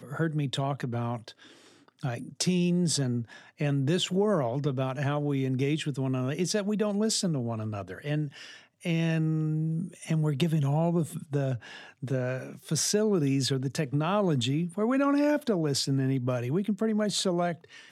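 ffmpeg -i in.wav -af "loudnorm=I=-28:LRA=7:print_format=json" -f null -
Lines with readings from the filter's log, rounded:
"input_i" : "-28.5",
"input_tp" : "-14.1",
"input_lra" : "3.0",
"input_thresh" : "-38.8",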